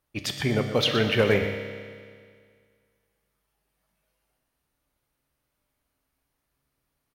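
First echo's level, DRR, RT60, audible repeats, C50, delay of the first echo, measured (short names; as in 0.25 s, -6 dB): -11.0 dB, 4.5 dB, 2.0 s, 1, 6.0 dB, 0.122 s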